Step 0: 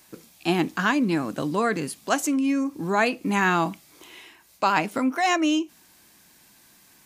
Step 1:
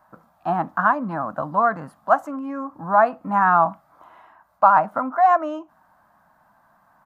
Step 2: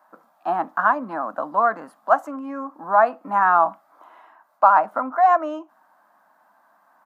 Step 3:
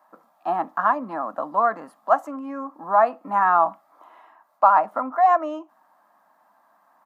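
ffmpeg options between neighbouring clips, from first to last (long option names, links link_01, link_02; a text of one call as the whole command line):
ffmpeg -i in.wav -af "firequalizer=gain_entry='entry(200,0);entry(390,-13);entry(620,11);entry(1300,11);entry(2300,-17);entry(5900,-23);entry(8600,-23);entry(15000,-16)':delay=0.05:min_phase=1,volume=-2.5dB" out.wav
ffmpeg -i in.wav -af "highpass=frequency=260:width=0.5412,highpass=frequency=260:width=1.3066" out.wav
ffmpeg -i in.wav -af "bandreject=frequency=1500:width=9.4,volume=-1dB" out.wav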